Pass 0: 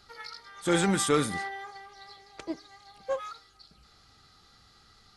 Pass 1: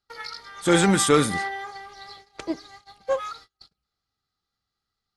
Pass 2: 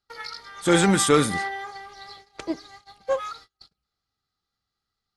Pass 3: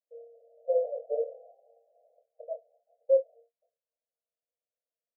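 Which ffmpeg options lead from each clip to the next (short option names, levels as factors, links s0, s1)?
-af "agate=range=0.0282:threshold=0.00251:ratio=16:detection=peak,volume=2.11"
-af anull
-filter_complex "[0:a]asuperpass=centerf=570:order=20:qfactor=2.3,asplit=2[s0][s1];[s1]adelay=26,volume=0.501[s2];[s0][s2]amix=inputs=2:normalize=0"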